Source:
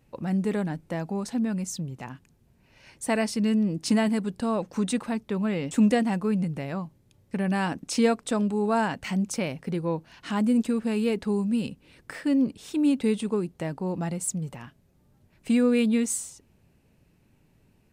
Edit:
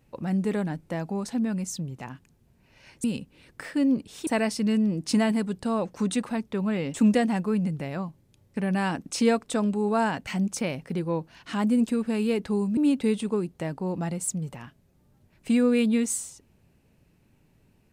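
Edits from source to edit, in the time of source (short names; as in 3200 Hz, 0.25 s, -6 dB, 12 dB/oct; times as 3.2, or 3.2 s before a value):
11.54–12.77 move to 3.04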